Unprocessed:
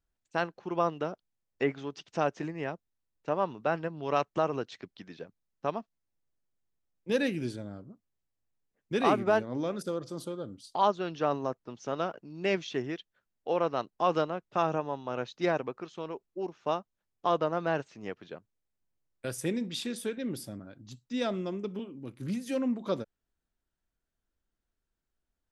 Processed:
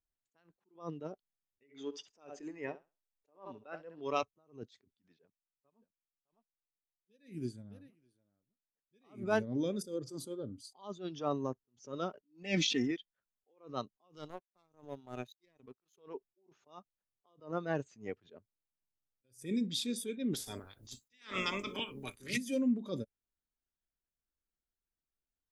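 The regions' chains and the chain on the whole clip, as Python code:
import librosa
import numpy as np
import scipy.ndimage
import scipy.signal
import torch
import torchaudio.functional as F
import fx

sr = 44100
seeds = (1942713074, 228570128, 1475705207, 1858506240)

y = fx.chain(x, sr, fx.peak_eq(hz=140.0, db=-9.0, octaves=1.7),
    fx.room_flutter(wall_m=11.4, rt60_s=0.28), at=(1.63, 4.23))
y = fx.chain(y, sr, fx.echo_single(ms=608, db=-17.5),
    fx.upward_expand(threshold_db=-44.0, expansion=1.5), at=(5.03, 8.96))
y = fx.chain(y, sr, fx.comb(ms=3.9, depth=0.61),
    fx.sustainer(db_per_s=41.0), at=(12.23, 12.91))
y = fx.chain(y, sr, fx.power_curve(exponent=1.4),
    fx.high_shelf(hz=3100.0, db=7.0), at=(14.16, 15.98))
y = fx.spec_clip(y, sr, under_db=25, at=(20.33, 22.36), fade=0.02)
y = fx.dynamic_eq(y, sr, hz=1700.0, q=0.96, threshold_db=-48.0, ratio=4.0, max_db=8, at=(20.33, 22.36), fade=0.02)
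y = fx.noise_reduce_blind(y, sr, reduce_db=12)
y = fx.dynamic_eq(y, sr, hz=840.0, q=0.73, threshold_db=-40.0, ratio=4.0, max_db=-7)
y = fx.attack_slew(y, sr, db_per_s=180.0)
y = F.gain(torch.from_numpy(y), 1.0).numpy()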